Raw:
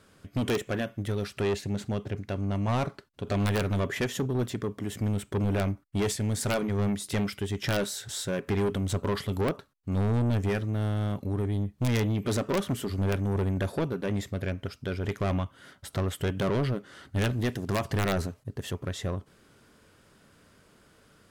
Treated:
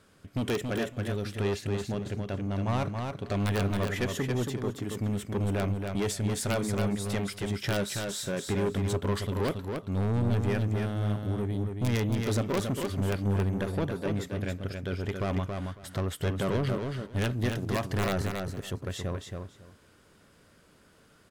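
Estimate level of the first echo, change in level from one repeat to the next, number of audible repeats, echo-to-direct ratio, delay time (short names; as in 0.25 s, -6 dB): -5.0 dB, -15.0 dB, 2, -5.0 dB, 0.276 s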